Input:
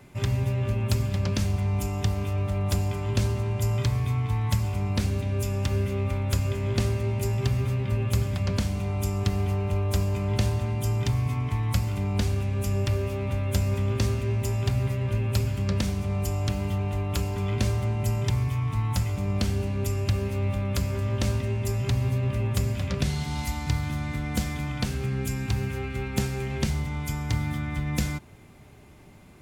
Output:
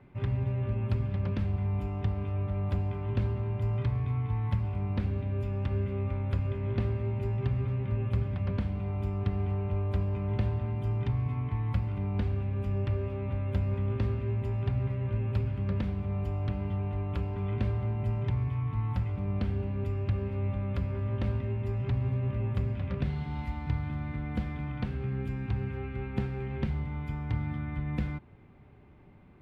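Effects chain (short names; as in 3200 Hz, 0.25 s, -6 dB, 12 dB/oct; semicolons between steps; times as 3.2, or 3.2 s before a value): air absorption 490 m; notch 640 Hz, Q 12; gain -4 dB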